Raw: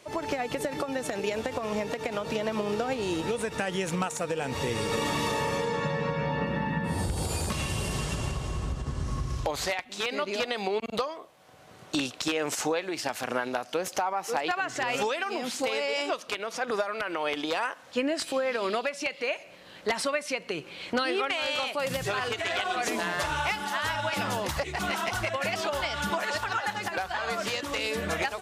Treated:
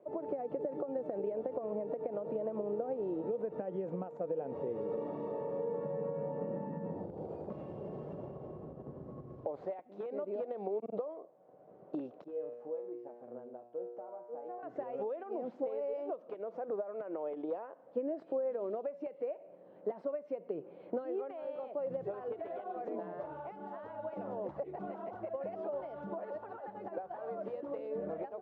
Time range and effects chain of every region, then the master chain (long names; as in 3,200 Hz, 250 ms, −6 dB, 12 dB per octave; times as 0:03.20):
0:12.24–0:14.63: tilt shelving filter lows +3.5 dB, about 1,400 Hz + tuned comb filter 120 Hz, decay 0.98 s, mix 90%
whole clip: parametric band 240 Hz −8 dB 0.63 octaves; downward compressor, threshold −30 dBFS; Chebyshev band-pass filter 210–590 Hz, order 2